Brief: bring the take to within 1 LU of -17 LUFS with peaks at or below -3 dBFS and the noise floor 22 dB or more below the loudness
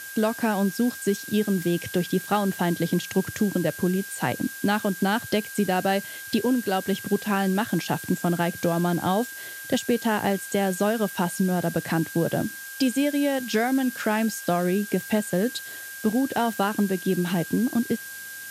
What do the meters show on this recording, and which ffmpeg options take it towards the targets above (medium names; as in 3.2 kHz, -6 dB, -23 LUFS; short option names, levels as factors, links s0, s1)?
steady tone 1.6 kHz; tone level -38 dBFS; noise floor -38 dBFS; noise floor target -47 dBFS; loudness -25.0 LUFS; peak level -9.5 dBFS; loudness target -17.0 LUFS
-> -af "bandreject=f=1600:w=30"
-af "afftdn=nr=9:nf=-38"
-af "volume=2.51,alimiter=limit=0.708:level=0:latency=1"